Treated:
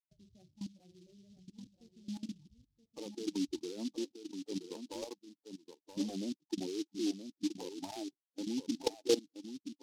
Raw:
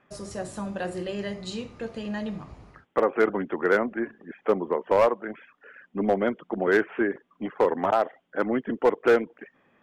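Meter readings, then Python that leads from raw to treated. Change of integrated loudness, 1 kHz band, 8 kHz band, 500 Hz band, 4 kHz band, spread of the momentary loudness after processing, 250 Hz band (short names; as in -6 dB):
-13.5 dB, -24.0 dB, n/a, -17.5 dB, -1.5 dB, 16 LU, -8.5 dB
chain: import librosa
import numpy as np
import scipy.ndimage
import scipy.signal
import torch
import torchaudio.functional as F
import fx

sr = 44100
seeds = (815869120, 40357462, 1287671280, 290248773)

p1 = fx.bin_expand(x, sr, power=2.0)
p2 = fx.level_steps(p1, sr, step_db=19)
p3 = fx.formant_cascade(p2, sr, vowel='u')
p4 = p3 + fx.echo_single(p3, sr, ms=975, db=-9.0, dry=0)
p5 = fx.noise_mod_delay(p4, sr, seeds[0], noise_hz=4300.0, depth_ms=0.11)
y = p5 * 10.0 ** (9.0 / 20.0)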